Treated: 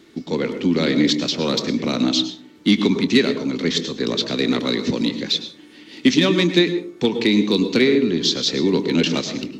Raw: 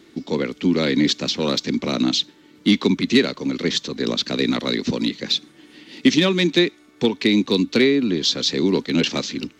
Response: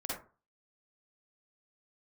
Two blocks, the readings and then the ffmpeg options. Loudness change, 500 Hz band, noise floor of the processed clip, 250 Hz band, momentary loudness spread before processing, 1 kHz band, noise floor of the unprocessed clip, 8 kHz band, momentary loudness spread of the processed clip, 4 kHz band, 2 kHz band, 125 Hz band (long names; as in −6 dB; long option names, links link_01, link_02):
+1.0 dB, +1.5 dB, −45 dBFS, +1.0 dB, 7 LU, +1.0 dB, −52 dBFS, can't be measured, 7 LU, +0.5 dB, +0.5 dB, +1.0 dB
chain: -filter_complex "[0:a]asplit=2[link_01][link_02];[1:a]atrim=start_sample=2205,asetrate=26460,aresample=44100,adelay=24[link_03];[link_02][link_03]afir=irnorm=-1:irlink=0,volume=-14dB[link_04];[link_01][link_04]amix=inputs=2:normalize=0"